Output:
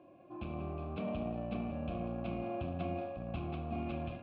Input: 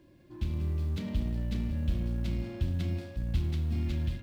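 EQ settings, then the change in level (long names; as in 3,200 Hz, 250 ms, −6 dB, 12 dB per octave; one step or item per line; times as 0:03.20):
formant filter a
high-frequency loss of the air 400 metres
parametric band 170 Hz +4.5 dB 2.5 octaves
+18.0 dB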